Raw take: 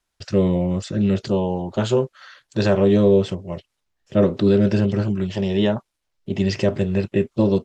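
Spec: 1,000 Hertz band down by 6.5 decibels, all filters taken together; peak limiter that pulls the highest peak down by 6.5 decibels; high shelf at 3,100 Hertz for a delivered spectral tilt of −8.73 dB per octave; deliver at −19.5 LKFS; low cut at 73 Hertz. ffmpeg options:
ffmpeg -i in.wav -af "highpass=73,equalizer=frequency=1000:width_type=o:gain=-8.5,highshelf=frequency=3100:gain=-6,volume=4.5dB,alimiter=limit=-9dB:level=0:latency=1" out.wav

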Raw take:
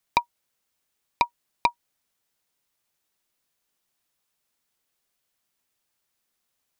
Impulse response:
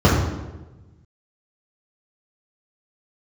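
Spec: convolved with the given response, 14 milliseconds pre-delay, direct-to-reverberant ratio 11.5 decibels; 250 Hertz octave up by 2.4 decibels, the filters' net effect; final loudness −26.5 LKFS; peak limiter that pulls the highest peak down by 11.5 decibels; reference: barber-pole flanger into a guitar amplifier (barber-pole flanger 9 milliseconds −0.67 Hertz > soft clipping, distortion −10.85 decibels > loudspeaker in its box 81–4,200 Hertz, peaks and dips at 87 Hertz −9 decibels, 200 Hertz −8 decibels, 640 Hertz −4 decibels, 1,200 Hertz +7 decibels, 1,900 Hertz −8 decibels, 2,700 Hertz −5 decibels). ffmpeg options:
-filter_complex "[0:a]equalizer=frequency=250:width_type=o:gain=6,alimiter=limit=-16dB:level=0:latency=1,asplit=2[link_01][link_02];[1:a]atrim=start_sample=2205,adelay=14[link_03];[link_02][link_03]afir=irnorm=-1:irlink=0,volume=-35.5dB[link_04];[link_01][link_04]amix=inputs=2:normalize=0,asplit=2[link_05][link_06];[link_06]adelay=9,afreqshift=-0.67[link_07];[link_05][link_07]amix=inputs=2:normalize=1,asoftclip=threshold=-30.5dB,highpass=81,equalizer=frequency=87:width_type=q:width=4:gain=-9,equalizer=frequency=200:width_type=q:width=4:gain=-8,equalizer=frequency=640:width_type=q:width=4:gain=-4,equalizer=frequency=1200:width_type=q:width=4:gain=7,equalizer=frequency=1900:width_type=q:width=4:gain=-8,equalizer=frequency=2700:width_type=q:width=4:gain=-5,lowpass=frequency=4200:width=0.5412,lowpass=frequency=4200:width=1.3066,volume=17dB"

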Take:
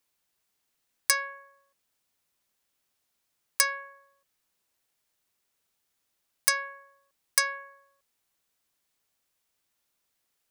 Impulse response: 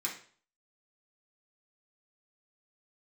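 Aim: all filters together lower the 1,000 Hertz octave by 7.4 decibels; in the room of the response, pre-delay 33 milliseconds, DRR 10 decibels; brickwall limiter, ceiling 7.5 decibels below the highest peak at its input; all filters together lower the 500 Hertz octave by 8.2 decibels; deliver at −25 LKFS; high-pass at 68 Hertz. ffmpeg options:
-filter_complex "[0:a]highpass=68,equalizer=frequency=500:width_type=o:gain=-7,equalizer=frequency=1000:width_type=o:gain=-7,alimiter=limit=-12dB:level=0:latency=1,asplit=2[link_01][link_02];[1:a]atrim=start_sample=2205,adelay=33[link_03];[link_02][link_03]afir=irnorm=-1:irlink=0,volume=-13dB[link_04];[link_01][link_04]amix=inputs=2:normalize=0,volume=8.5dB"

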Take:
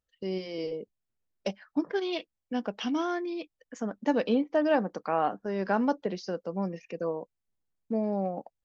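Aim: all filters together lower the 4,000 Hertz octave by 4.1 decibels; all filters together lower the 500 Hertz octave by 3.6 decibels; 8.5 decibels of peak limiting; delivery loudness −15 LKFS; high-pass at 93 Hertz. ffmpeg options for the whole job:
ffmpeg -i in.wav -af "highpass=93,equalizer=frequency=500:width_type=o:gain=-4.5,equalizer=frequency=4000:width_type=o:gain=-6,volume=20.5dB,alimiter=limit=-3.5dB:level=0:latency=1" out.wav

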